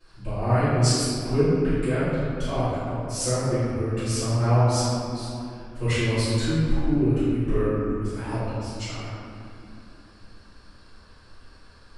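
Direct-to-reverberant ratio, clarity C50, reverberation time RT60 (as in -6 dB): -18.5 dB, -5.5 dB, 2.7 s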